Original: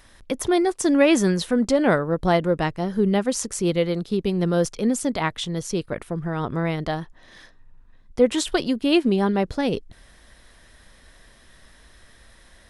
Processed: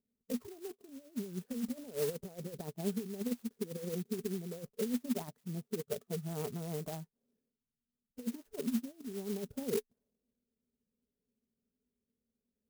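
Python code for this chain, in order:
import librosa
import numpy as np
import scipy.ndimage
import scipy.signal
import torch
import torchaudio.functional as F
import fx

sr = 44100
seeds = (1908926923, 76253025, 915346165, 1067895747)

y = fx.vibrato(x, sr, rate_hz=8.1, depth_cents=79.0)
y = fx.noise_reduce_blind(y, sr, reduce_db=18)
y = fx.over_compress(y, sr, threshold_db=-25.0, ratio=-0.5)
y = fx.double_bandpass(y, sr, hz=320.0, octaves=0.82)
y = fx.env_lowpass(y, sr, base_hz=310.0, full_db=-29.5)
y = fx.clock_jitter(y, sr, seeds[0], jitter_ms=0.11)
y = y * librosa.db_to_amplitude(-3.0)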